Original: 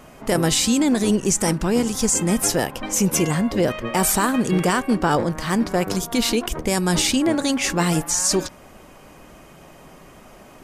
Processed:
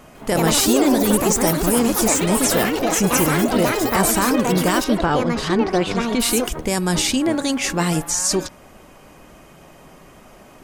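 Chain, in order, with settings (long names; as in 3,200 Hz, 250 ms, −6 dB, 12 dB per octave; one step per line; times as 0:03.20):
delay with pitch and tempo change per echo 151 ms, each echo +5 semitones, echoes 3
0:04.84–0:06.20: low-pass filter 4,200 Hz 12 dB per octave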